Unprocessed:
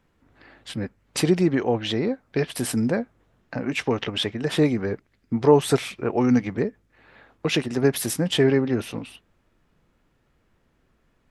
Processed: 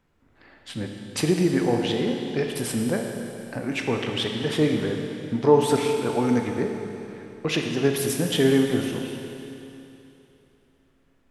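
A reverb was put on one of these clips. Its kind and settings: Schroeder reverb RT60 3 s, combs from 26 ms, DRR 2.5 dB; trim -2.5 dB

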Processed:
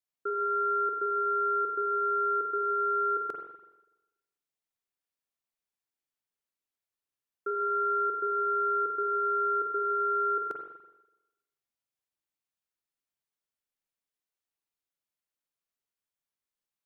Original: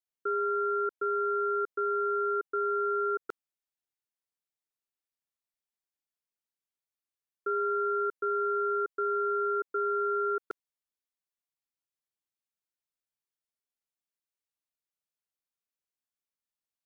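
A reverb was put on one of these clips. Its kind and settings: spring tank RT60 1 s, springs 41/48 ms, chirp 70 ms, DRR 2.5 dB; trim -1 dB

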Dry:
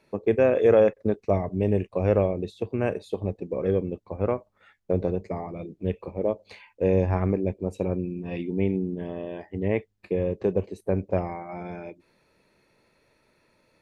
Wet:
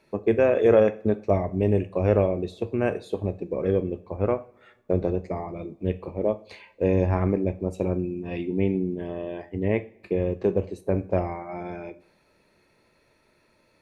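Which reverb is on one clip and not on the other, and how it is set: two-slope reverb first 0.38 s, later 1.7 s, from -22 dB, DRR 10.5 dB; trim +1 dB

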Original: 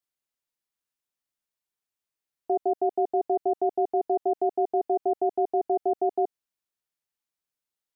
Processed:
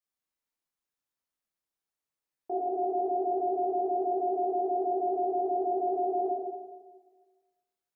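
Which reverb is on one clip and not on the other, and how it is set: plate-style reverb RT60 1.4 s, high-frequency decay 0.45×, DRR -7 dB; trim -8.5 dB

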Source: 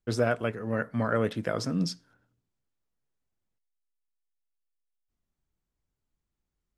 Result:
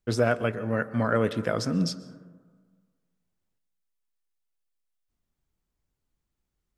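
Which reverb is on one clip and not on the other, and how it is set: plate-style reverb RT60 1.6 s, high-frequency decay 0.25×, pre-delay 115 ms, DRR 16 dB; trim +2.5 dB

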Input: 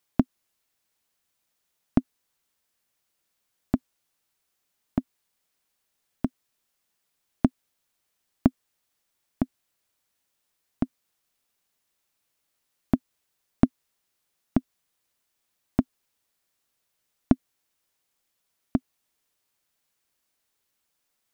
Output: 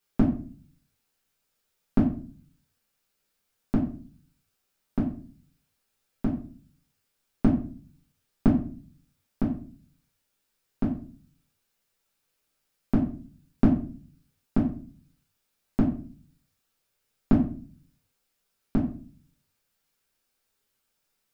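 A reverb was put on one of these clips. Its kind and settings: simulated room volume 33 m³, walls mixed, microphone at 1.1 m; trim -6 dB

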